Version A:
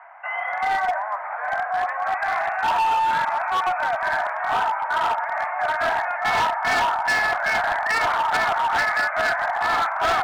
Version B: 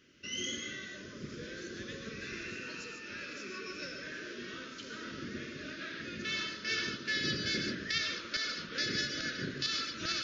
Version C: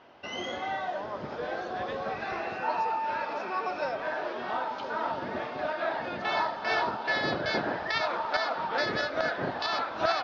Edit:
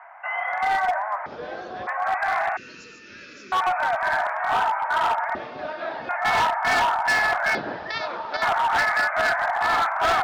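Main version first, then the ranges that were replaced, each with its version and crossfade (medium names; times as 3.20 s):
A
1.26–1.87 s: from C
2.57–3.52 s: from B
5.35–6.09 s: from C
7.55–8.42 s: from C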